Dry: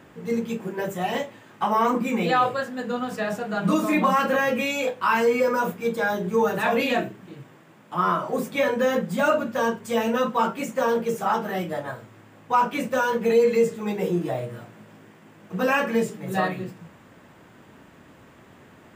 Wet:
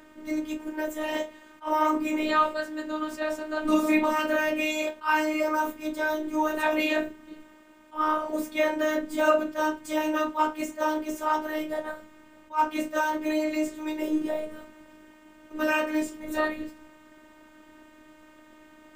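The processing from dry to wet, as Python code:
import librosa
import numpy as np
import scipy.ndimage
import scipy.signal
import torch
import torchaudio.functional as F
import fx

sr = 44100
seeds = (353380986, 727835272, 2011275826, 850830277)

y = fx.robotise(x, sr, hz=308.0)
y = fx.attack_slew(y, sr, db_per_s=290.0)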